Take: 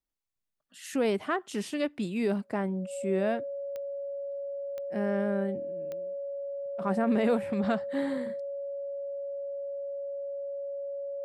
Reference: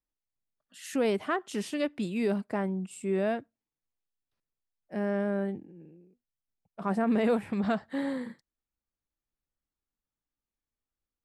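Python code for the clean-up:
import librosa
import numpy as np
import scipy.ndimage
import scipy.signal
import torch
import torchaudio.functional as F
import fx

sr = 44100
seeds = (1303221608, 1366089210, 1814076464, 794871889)

y = fx.fix_declick_ar(x, sr, threshold=10.0)
y = fx.notch(y, sr, hz=560.0, q=30.0)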